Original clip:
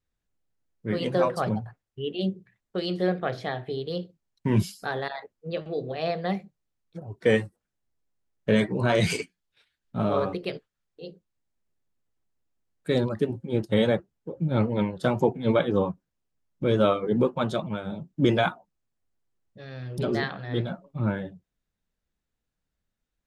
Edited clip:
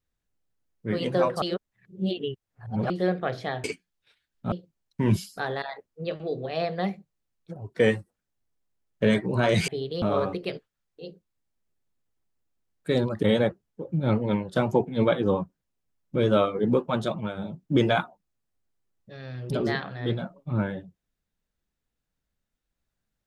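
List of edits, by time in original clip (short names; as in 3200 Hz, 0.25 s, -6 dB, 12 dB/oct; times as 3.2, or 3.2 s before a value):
1.42–2.9 reverse
3.64–3.98 swap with 9.14–10.02
13.23–13.71 cut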